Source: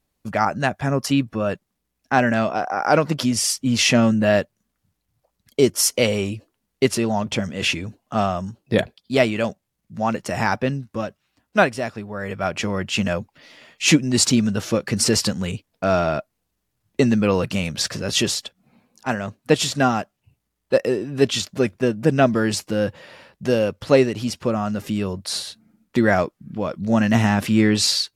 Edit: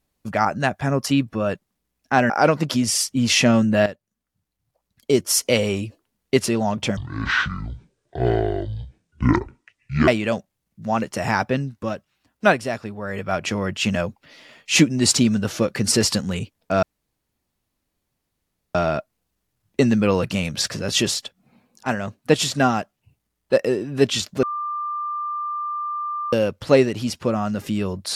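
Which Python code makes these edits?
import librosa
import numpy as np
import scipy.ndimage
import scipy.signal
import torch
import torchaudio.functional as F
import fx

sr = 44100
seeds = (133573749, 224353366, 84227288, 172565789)

y = fx.edit(x, sr, fx.cut(start_s=2.3, length_s=0.49),
    fx.fade_in_from(start_s=4.35, length_s=1.69, floor_db=-13.0),
    fx.speed_span(start_s=7.46, length_s=1.74, speed=0.56),
    fx.insert_room_tone(at_s=15.95, length_s=1.92),
    fx.bleep(start_s=21.63, length_s=1.9, hz=1190.0, db=-24.0), tone=tone)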